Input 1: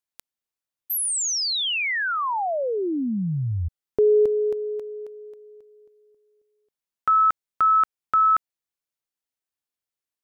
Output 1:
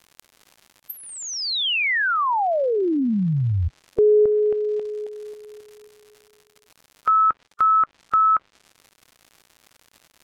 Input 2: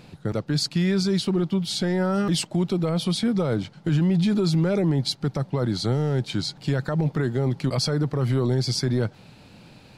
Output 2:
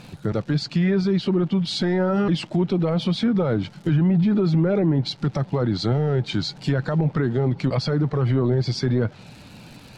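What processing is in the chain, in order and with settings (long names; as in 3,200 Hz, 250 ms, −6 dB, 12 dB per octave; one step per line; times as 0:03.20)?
spectral magnitudes quantised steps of 15 dB
in parallel at −2 dB: brickwall limiter −23.5 dBFS
on the sum: surface crackle 190 per second −37 dBFS
treble cut that deepens with the level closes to 1,800 Hz, closed at −15 dBFS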